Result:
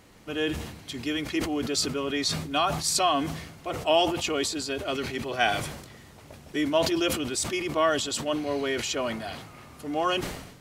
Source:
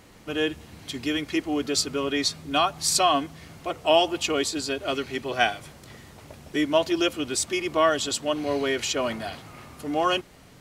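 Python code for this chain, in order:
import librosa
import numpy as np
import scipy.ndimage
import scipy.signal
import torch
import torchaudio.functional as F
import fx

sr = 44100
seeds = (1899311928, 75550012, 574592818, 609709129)

y = fx.sustainer(x, sr, db_per_s=60.0)
y = y * librosa.db_to_amplitude(-3.0)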